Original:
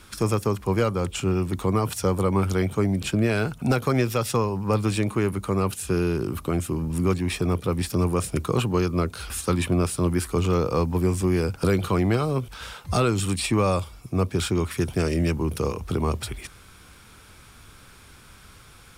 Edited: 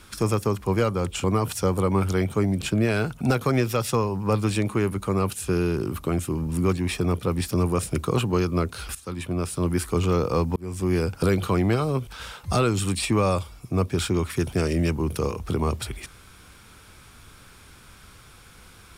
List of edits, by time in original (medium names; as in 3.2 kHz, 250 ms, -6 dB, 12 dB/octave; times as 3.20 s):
1.24–1.65 s: delete
9.36–10.21 s: fade in, from -16 dB
10.97–11.35 s: fade in linear